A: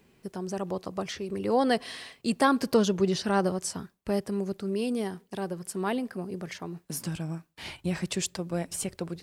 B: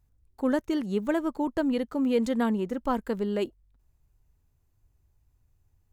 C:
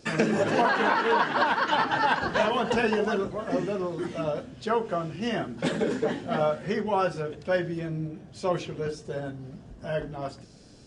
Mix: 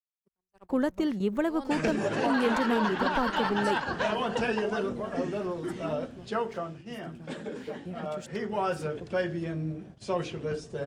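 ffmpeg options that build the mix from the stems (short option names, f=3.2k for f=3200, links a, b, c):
-filter_complex "[0:a]acrossover=split=890[a][b];[a]aeval=exprs='val(0)*(1-0.7/2+0.7/2*cos(2*PI*1*n/s))':c=same[c];[b]aeval=exprs='val(0)*(1-0.7/2-0.7/2*cos(2*PI*1*n/s))':c=same[d];[c][d]amix=inputs=2:normalize=0,aeval=exprs='sgn(val(0))*max(abs(val(0))-0.00251,0)':c=same,volume=-9dB,asplit=2[e][f];[1:a]adelay=300,volume=2dB[g];[2:a]highshelf=f=6.4k:g=6,adelay=1650,volume=7.5dB,afade=t=out:st=6.37:d=0.47:silence=0.375837,afade=t=in:st=8.1:d=0.69:silence=0.316228[h];[f]apad=whole_len=274433[i];[g][i]sidechaingate=range=-33dB:threshold=-57dB:ratio=16:detection=peak[j];[e][j][h]amix=inputs=3:normalize=0,agate=range=-41dB:threshold=-46dB:ratio=16:detection=peak,bass=f=250:g=0,treble=f=4k:g=-5,acrossover=split=130|3000[k][l][m];[l]acompressor=threshold=-26dB:ratio=2[n];[k][n][m]amix=inputs=3:normalize=0"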